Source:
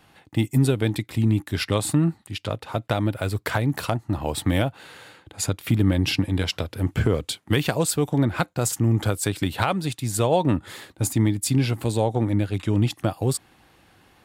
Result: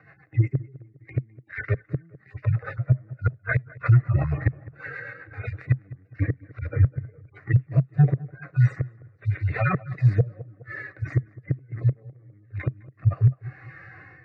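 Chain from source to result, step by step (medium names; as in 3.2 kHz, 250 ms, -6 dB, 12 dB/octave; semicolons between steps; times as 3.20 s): harmonic-percussive separation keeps harmonic; peaking EQ 220 Hz +12.5 dB 0.37 oct; band-stop 510 Hz, Q 12; level rider gain up to 9 dB; inverted gate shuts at -11 dBFS, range -39 dB; rotary cabinet horn 8 Hz, later 0.75 Hz, at 6.59 s; in parallel at -2 dB: level held to a coarse grid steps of 21 dB; on the sum: cabinet simulation 120–3200 Hz, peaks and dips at 130 Hz +8 dB, 200 Hz -7 dB, 360 Hz -7 dB, 1.1 kHz +3 dB, 1.9 kHz +9 dB, 3.1 kHz -9 dB; static phaser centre 890 Hz, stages 6; tape echo 206 ms, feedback 55%, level -17.5 dB, low-pass 1.1 kHz; loudness maximiser +15.5 dB; trim -8.5 dB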